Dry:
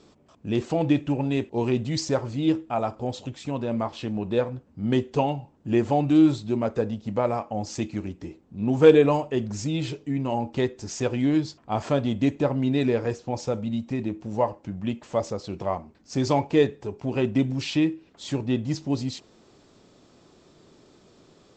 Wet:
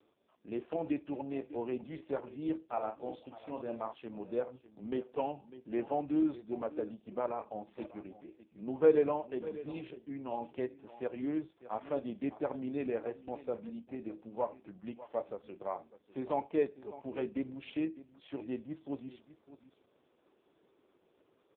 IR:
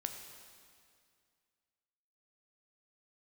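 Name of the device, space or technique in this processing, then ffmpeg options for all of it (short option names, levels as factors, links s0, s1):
satellite phone: -filter_complex "[0:a]asettb=1/sr,asplit=3[s0][s1][s2];[s0]atrim=end=2.664[s3];[s1]atrim=start=2.66:end=3.93,asetpts=PTS-STARTPTS,afade=t=in:d=0.004:c=qsin,afade=t=out:st=1.266:d=0.004:c=qsin,asplit=2[s4][s5];[s5]adelay=46,volume=0.501[s6];[s4][s6]amix=inputs=2:normalize=0,atrim=end_sample=56007[s7];[s2]atrim=start=3.926[s8];[s3][s7]acrossfade=d=0.004:c1=hsin:c2=qsin[s9];[s9][s8]acrossfade=d=0.004:c1=qsin:c2=hsin,asplit=3[s10][s11][s12];[s10]afade=t=out:st=11.47:d=0.02[s13];[s11]adynamicequalizer=threshold=0.00794:dfrequency=1400:dqfactor=1:tfrequency=1400:tqfactor=1:attack=5:release=100:ratio=0.375:range=2.5:mode=cutabove:tftype=bell,afade=t=in:st=11.47:d=0.02,afade=t=out:st=12:d=0.02[s14];[s12]afade=t=in:st=12:d=0.02[s15];[s13][s14][s15]amix=inputs=3:normalize=0,highpass=310,lowpass=3000,aecho=1:1:600:0.158,volume=0.355" -ar 8000 -c:a libopencore_amrnb -b:a 4750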